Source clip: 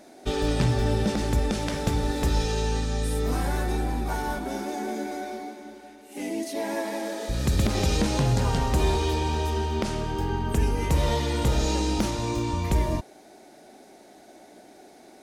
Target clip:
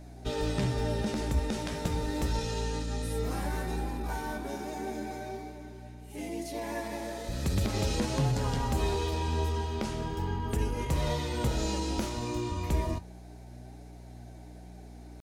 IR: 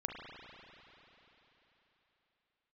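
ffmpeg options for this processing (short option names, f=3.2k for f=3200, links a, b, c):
-af "asetrate=45392,aresample=44100,atempo=0.971532,aeval=exprs='val(0)+0.0112*(sin(2*PI*60*n/s)+sin(2*PI*2*60*n/s)/2+sin(2*PI*3*60*n/s)/3+sin(2*PI*4*60*n/s)/4+sin(2*PI*5*60*n/s)/5)':c=same,flanger=delay=6.6:depth=7.7:regen=65:speed=0.36:shape=triangular,volume=-1.5dB"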